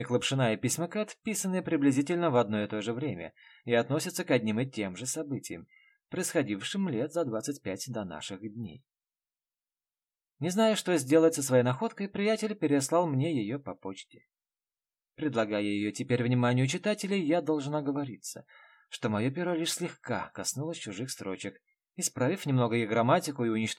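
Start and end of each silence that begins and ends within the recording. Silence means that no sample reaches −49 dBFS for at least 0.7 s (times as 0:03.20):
0:08.78–0:10.41
0:14.18–0:15.18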